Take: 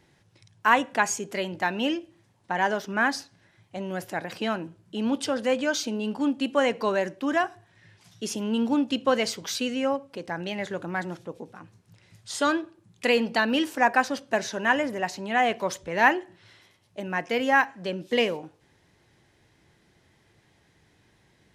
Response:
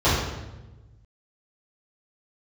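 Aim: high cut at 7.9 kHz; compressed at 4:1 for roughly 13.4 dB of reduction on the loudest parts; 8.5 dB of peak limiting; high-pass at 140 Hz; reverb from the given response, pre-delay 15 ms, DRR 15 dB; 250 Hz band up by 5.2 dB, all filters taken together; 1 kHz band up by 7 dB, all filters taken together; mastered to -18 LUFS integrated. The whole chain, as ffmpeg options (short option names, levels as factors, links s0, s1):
-filter_complex "[0:a]highpass=140,lowpass=7900,equalizer=f=250:t=o:g=6,equalizer=f=1000:t=o:g=8.5,acompressor=threshold=0.0501:ratio=4,alimiter=limit=0.1:level=0:latency=1,asplit=2[s0][s1];[1:a]atrim=start_sample=2205,adelay=15[s2];[s1][s2]afir=irnorm=-1:irlink=0,volume=0.0178[s3];[s0][s3]amix=inputs=2:normalize=0,volume=4.73"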